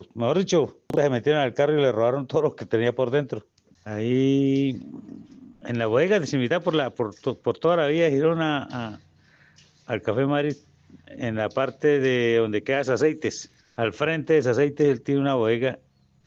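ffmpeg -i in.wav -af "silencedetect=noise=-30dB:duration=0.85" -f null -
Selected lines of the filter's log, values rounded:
silence_start: 8.95
silence_end: 9.90 | silence_duration: 0.95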